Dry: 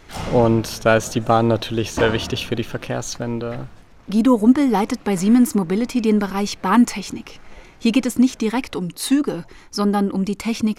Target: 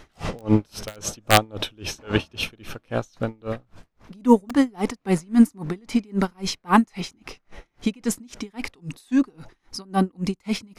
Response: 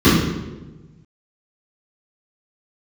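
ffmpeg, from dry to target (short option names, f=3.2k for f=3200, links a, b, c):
-af "asetrate=41625,aresample=44100,atempo=1.05946,aeval=exprs='(mod(1.58*val(0)+1,2)-1)/1.58':c=same,aeval=exprs='val(0)*pow(10,-34*(0.5-0.5*cos(2*PI*3.7*n/s))/20)':c=same,volume=2dB"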